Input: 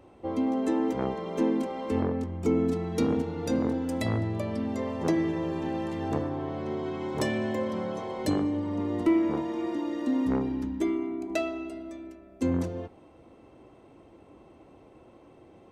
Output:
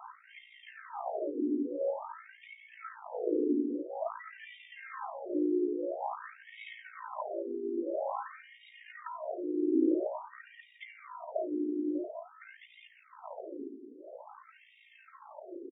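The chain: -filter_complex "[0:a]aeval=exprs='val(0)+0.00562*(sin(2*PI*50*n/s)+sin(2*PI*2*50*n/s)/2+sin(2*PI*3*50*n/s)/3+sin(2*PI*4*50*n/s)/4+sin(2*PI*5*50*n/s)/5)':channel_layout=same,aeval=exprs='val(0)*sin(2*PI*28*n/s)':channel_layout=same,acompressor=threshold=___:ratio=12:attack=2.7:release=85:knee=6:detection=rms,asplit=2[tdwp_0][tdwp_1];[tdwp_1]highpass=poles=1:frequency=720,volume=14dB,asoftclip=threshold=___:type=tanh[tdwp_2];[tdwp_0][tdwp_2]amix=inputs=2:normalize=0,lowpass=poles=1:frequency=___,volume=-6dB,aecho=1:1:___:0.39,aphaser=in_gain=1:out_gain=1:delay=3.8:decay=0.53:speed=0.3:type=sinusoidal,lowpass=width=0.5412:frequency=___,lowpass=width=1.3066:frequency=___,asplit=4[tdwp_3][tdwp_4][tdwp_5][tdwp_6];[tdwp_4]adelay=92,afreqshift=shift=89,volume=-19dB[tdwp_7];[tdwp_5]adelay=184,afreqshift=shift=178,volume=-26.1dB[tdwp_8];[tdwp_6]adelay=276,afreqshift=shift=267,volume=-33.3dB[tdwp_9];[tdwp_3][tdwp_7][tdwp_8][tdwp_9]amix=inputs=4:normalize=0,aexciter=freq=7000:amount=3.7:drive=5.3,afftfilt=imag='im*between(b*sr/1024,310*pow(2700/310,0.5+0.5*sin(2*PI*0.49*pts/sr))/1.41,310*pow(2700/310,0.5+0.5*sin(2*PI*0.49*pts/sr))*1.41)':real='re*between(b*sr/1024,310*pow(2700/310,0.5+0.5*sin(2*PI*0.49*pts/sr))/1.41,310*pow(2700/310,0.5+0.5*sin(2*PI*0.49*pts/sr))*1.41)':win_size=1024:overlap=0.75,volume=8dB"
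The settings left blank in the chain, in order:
-37dB, -28.5dB, 2200, 3.2, 9000, 9000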